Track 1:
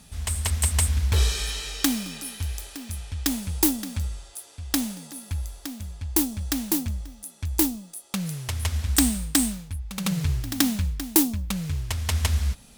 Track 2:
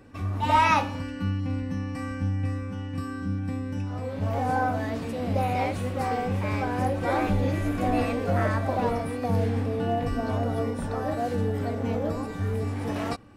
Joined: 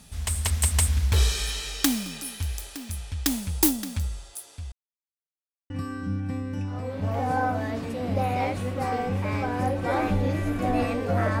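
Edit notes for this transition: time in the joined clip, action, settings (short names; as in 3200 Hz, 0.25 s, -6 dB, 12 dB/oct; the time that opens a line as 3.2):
track 1
4.72–5.7 mute
5.7 switch to track 2 from 2.89 s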